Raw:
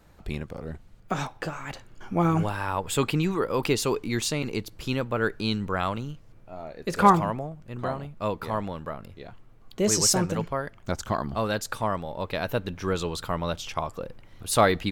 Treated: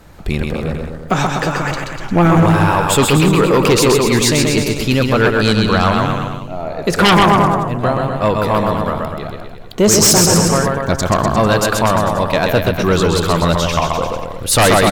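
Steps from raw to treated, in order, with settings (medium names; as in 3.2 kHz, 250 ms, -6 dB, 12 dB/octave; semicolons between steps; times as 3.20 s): bouncing-ball echo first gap 130 ms, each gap 0.9×, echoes 5; sine folder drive 10 dB, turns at -6 dBFS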